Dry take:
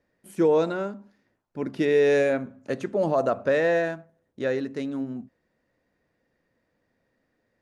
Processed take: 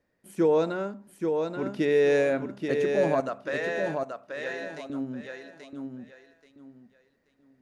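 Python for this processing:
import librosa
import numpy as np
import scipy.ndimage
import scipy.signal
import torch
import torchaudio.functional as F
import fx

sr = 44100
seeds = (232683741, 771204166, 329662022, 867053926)

y = fx.highpass(x, sr, hz=1300.0, slope=6, at=(3.2, 4.9))
y = fx.echo_feedback(y, sr, ms=831, feedback_pct=25, wet_db=-5)
y = y * 10.0 ** (-2.0 / 20.0)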